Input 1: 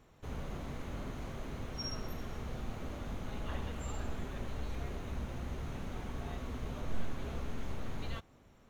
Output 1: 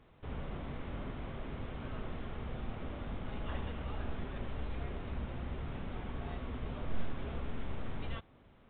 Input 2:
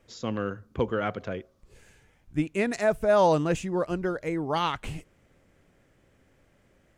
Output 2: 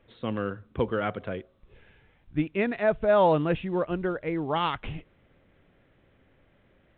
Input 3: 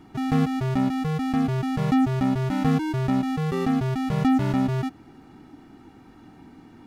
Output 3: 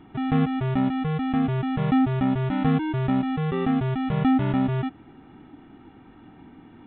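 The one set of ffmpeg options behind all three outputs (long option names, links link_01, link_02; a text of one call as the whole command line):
ffmpeg -i in.wav -ar 8000 -c:a pcm_mulaw out.wav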